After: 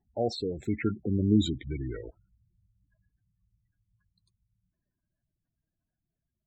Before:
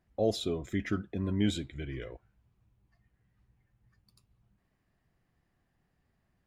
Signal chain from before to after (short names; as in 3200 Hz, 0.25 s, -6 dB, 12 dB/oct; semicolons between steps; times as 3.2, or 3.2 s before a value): Doppler pass-by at 1.42, 31 m/s, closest 21 m; spectral gate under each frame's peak -15 dB strong; wow and flutter 22 cents; gain +6 dB